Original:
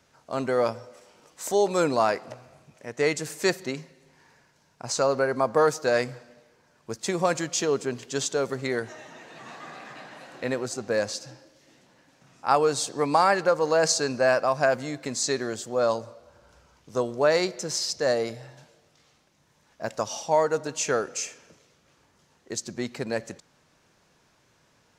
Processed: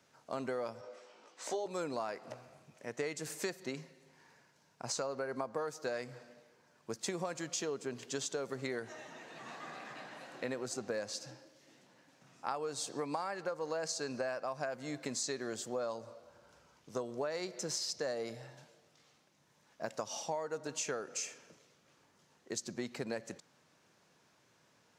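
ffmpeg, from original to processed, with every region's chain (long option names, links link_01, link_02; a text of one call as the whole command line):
ffmpeg -i in.wav -filter_complex "[0:a]asettb=1/sr,asplit=3[link_01][link_02][link_03];[link_01]atrim=end=0.814[link_04];[link_02]atrim=start=0.81:end=1.66,asetpts=PTS-STARTPTS,afade=type=in:duration=0.004:curve=qsin,afade=type=out:start_time=0.846:duration=0.004:curve=qsin,highpass=290,lowpass=5300,asplit=2[link_05][link_06];[link_06]adelay=18,volume=-3dB[link_07];[link_05][link_07]amix=inputs=2:normalize=0,atrim=end_sample=37485[link_08];[link_03]atrim=start=1.656[link_09];[link_04][link_08]acrossfade=duration=0.004:curve1=hsin:curve2=qsin[link_10];[link_10][link_09]acrossfade=duration=0.004:curve1=qsin:curve2=hsin,highpass=120,acompressor=threshold=-29dB:ratio=10,volume=-5dB" out.wav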